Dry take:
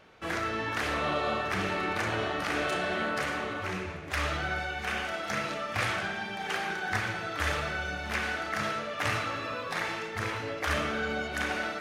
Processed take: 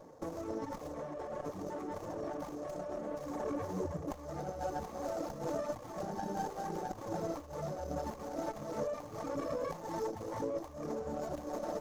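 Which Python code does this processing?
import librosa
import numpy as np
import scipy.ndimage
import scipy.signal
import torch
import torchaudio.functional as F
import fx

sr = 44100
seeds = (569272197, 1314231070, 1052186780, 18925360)

y = fx.ripple_eq(x, sr, per_octave=1.1, db=8)
y = fx.echo_heads(y, sr, ms=66, heads='first and second', feedback_pct=62, wet_db=-16.5)
y = fx.dereverb_blind(y, sr, rt60_s=0.79)
y = fx.over_compress(y, sr, threshold_db=-38.0, ratio=-1.0)
y = scipy.signal.sosfilt(scipy.signal.ellip(3, 1.0, 40, [1000.0, 5400.0], 'bandstop', fs=sr, output='sos'), y)
y = fx.low_shelf(y, sr, hz=120.0, db=-6.5)
y = fx.notch_comb(y, sr, f0_hz=980.0)
y = fx.running_max(y, sr, window=9)
y = F.gain(torch.from_numpy(y), 3.5).numpy()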